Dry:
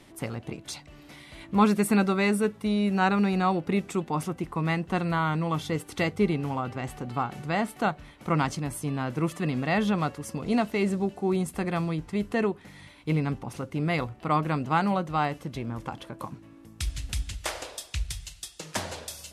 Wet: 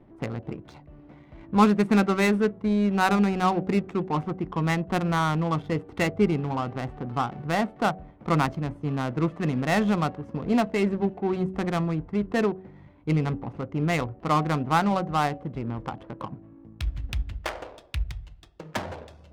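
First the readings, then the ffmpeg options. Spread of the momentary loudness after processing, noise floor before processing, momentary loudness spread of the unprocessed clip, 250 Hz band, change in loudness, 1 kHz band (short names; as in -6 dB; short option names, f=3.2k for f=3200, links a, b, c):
13 LU, -51 dBFS, 14 LU, +2.0 dB, +2.0 dB, +2.0 dB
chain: -af "adynamicsmooth=sensitivity=4:basefreq=720,bandreject=f=94.02:t=h:w=4,bandreject=f=188.04:t=h:w=4,bandreject=f=282.06:t=h:w=4,bandreject=f=376.08:t=h:w=4,bandreject=f=470.1:t=h:w=4,bandreject=f=564.12:t=h:w=4,bandreject=f=658.14:t=h:w=4,bandreject=f=752.16:t=h:w=4,volume=2.5dB"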